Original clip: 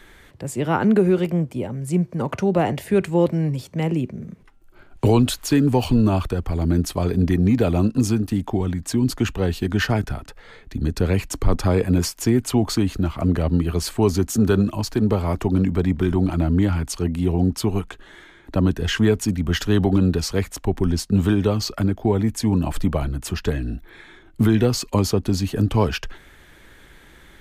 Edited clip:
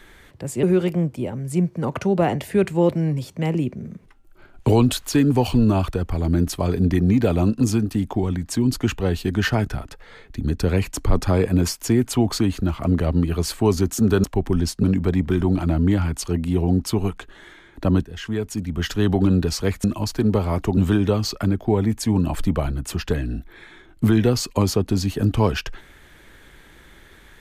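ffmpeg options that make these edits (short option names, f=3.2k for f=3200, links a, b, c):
-filter_complex "[0:a]asplit=7[a][b][c][d][e][f][g];[a]atrim=end=0.632[h];[b]atrim=start=0.998:end=14.612[i];[c]atrim=start=20.548:end=21.142[j];[d]atrim=start=15.538:end=18.76,asetpts=PTS-STARTPTS,afade=t=out:st=3.218:d=0.004:c=hsin:silence=0.188365[k];[e]atrim=start=18.76:end=20.552,asetpts=PTS-STARTPTS,afade=t=in:d=1.19:silence=0.188365[l];[f]atrim=start=14.608:end=15.542[m];[g]atrim=start=21.138[n];[h][i]acrossfade=d=0.004:c1=hsin:c2=hsin[o];[o][j]acrossfade=d=0.004:c1=hsin:c2=hsin[p];[k][l]concat=n=2:v=0:a=1[q];[p][q]acrossfade=d=0.004:c1=hsin:c2=hsin[r];[r][m]acrossfade=d=0.004:c1=hsin:c2=hsin[s];[s][n]acrossfade=d=0.004:c1=hsin:c2=hsin"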